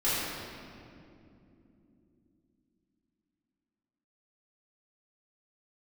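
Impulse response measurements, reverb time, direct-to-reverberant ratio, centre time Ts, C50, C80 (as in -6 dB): not exponential, -12.5 dB, 0.152 s, -3.5 dB, -1.5 dB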